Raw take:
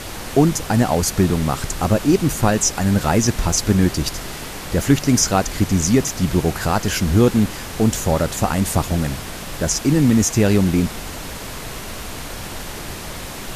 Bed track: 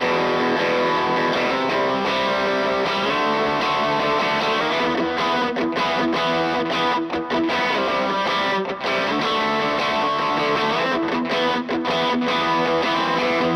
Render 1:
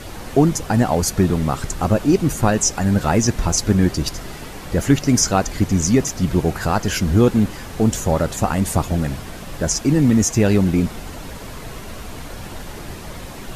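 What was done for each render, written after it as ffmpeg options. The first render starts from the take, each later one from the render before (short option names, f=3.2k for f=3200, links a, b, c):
-af "afftdn=nr=7:nf=-32"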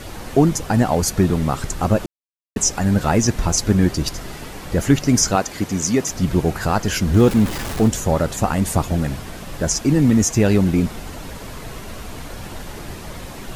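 -filter_complex "[0:a]asettb=1/sr,asplit=3[a][b][c];[a]atrim=end=5.354[d];[b]atrim=start=5.35:end=6.09,asetpts=PTS-STARTPTS,afade=t=in:d=0.004:c=qsin,afade=t=out:st=0.736:d=0.004:c=qsin,highpass=f=250:p=1[e];[c]atrim=start=6.086[f];[d][e]acrossfade=d=0.004:c1=hsin:c2=qsin[g];[g][f]acrossfade=d=0.004:c1=qsin:c2=hsin,asettb=1/sr,asplit=3[h][i][j];[h]atrim=end=7.144[k];[i]atrim=start=7.14:end=7.88,asetpts=PTS-STARTPTS,afade=t=in:d=0.004:c=qsin,afade=t=out:st=0.736:d=0.004:c=qsin,aeval=exprs='val(0)+0.5*0.0562*sgn(val(0))':c=same[l];[j]atrim=start=7.876[m];[k][l]acrossfade=d=0.004:c1=hsin:c2=qsin[n];[n][m]acrossfade=d=0.004:c1=qsin:c2=hsin,asplit=3[o][p][q];[o]atrim=end=2.06,asetpts=PTS-STARTPTS,afade=t=out:st=2.056:d=0.004:c=hsin[r];[p]atrim=start=2.06:end=2.56,asetpts=PTS-STARTPTS,volume=0[s];[q]atrim=start=2.56,asetpts=PTS-STARTPTS,afade=t=in:d=0.004:c=hsin[t];[r][s][t]concat=n=3:v=0:a=1"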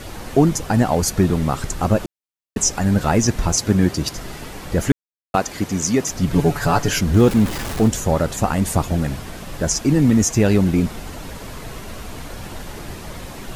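-filter_complex "[0:a]asettb=1/sr,asplit=3[a][b][c];[a]atrim=end=3.544[d];[b]atrim=start=3.54:end=4.16,asetpts=PTS-STARTPTS,afade=t=in:d=0.004:c=qsin,afade=t=out:st=0.616:d=0.004:c=qsin,highpass=76[e];[c]atrim=start=4.156[f];[d][e]acrossfade=d=0.004:c1=hsin:c2=qsin[g];[g][f]acrossfade=d=0.004:c1=qsin:c2=hsin,asettb=1/sr,asplit=3[h][i][j];[h]atrim=end=6.334[k];[i]atrim=start=6.33:end=7.01,asetpts=PTS-STARTPTS,afade=t=in:d=0.004:c=qsin,afade=t=out:st=0.676:d=0.004:c=qsin,aecho=1:1:7:0.82,atrim=end_sample=29988[l];[j]atrim=start=7.006[m];[k][l]acrossfade=d=0.004:c1=hsin:c2=qsin[n];[n][m]acrossfade=d=0.004:c1=qsin:c2=hsin,asplit=3[o][p][q];[o]atrim=end=4.92,asetpts=PTS-STARTPTS,afade=t=out:st=4.916:d=0.004:c=hsin[r];[p]atrim=start=4.92:end=5.34,asetpts=PTS-STARTPTS,volume=0[s];[q]atrim=start=5.34,asetpts=PTS-STARTPTS,afade=t=in:d=0.004:c=hsin[t];[r][s][t]concat=n=3:v=0:a=1"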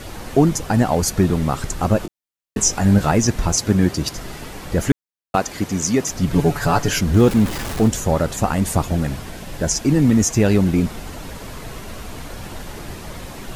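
-filter_complex "[0:a]asettb=1/sr,asplit=3[a][b][c];[a]atrim=end=2.024[d];[b]atrim=start=2.02:end=3.11,asetpts=PTS-STARTPTS,afade=t=in:d=0.004:c=qsin,afade=t=out:st=1.086:d=0.004:c=qsin,asplit=2[e][f];[f]adelay=20,volume=-5.5dB[g];[e][g]amix=inputs=2:normalize=0,atrim=end_sample=48069[h];[c]atrim=start=3.106[i];[d][h]acrossfade=d=0.004:c1=hsin:c2=qsin[j];[j][i]acrossfade=d=0.004:c1=qsin:c2=hsin,asettb=1/sr,asplit=3[k][l][m];[k]atrim=end=9.294[n];[l]atrim=start=9.29:end=9.84,asetpts=PTS-STARTPTS,afade=t=in:d=0.004:c=qsin,afade=t=out:st=0.546:d=0.004:c=qsin,bandreject=f=1.2k:w=7[o];[m]atrim=start=9.836[p];[n][o]acrossfade=d=0.004:c1=hsin:c2=qsin[q];[q][p]acrossfade=d=0.004:c1=qsin:c2=hsin"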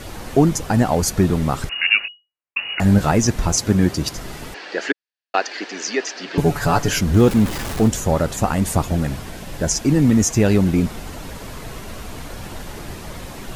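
-filter_complex "[0:a]asettb=1/sr,asplit=3[a][b][c];[a]atrim=end=1.694[d];[b]atrim=start=1.69:end=2.8,asetpts=PTS-STARTPTS,afade=t=in:d=0.004:c=qsin,afade=t=out:st=1.106:d=0.004:c=qsin,lowpass=f=2.5k:t=q:w=0.5098,lowpass=f=2.5k:t=q:w=0.6013,lowpass=f=2.5k:t=q:w=0.9,lowpass=f=2.5k:t=q:w=2.563,afreqshift=-2900[e];[c]atrim=start=2.796[f];[d][e]acrossfade=d=0.004:c1=hsin:c2=qsin[g];[g][f]acrossfade=d=0.004:c1=qsin:c2=hsin,asettb=1/sr,asplit=3[h][i][j];[h]atrim=end=4.544[k];[i]atrim=start=4.54:end=6.38,asetpts=PTS-STARTPTS,afade=t=in:d=0.004:c=qsin,afade=t=out:st=1.836:d=0.004:c=qsin,highpass=f=350:w=0.5412,highpass=f=350:w=1.3066,equalizer=f=530:t=q:w=4:g=-3,equalizer=f=1.1k:t=q:w=4:g=-4,equalizer=f=1.7k:t=q:w=4:g=9,equalizer=f=2.7k:t=q:w=4:g=6,equalizer=f=4.5k:t=q:w=4:g=6,lowpass=f=5.5k:w=0.5412,lowpass=f=5.5k:w=1.3066[l];[j]atrim=start=6.376[m];[k][l]acrossfade=d=0.004:c1=hsin:c2=qsin[n];[n][m]acrossfade=d=0.004:c1=qsin:c2=hsin"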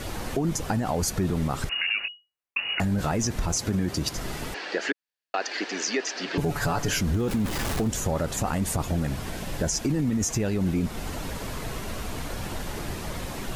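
-af "alimiter=limit=-12dB:level=0:latency=1:release=22,acompressor=threshold=-26dB:ratio=2"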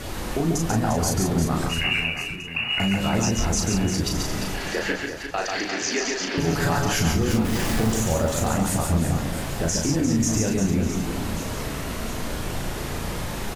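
-filter_complex "[0:a]asplit=2[a][b];[b]adelay=36,volume=-3.5dB[c];[a][c]amix=inputs=2:normalize=0,asplit=2[d][e];[e]aecho=0:1:140|350|665|1138|1846:0.631|0.398|0.251|0.158|0.1[f];[d][f]amix=inputs=2:normalize=0"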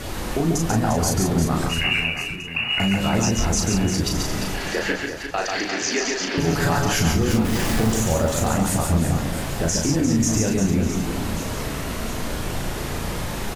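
-af "volume=2dB"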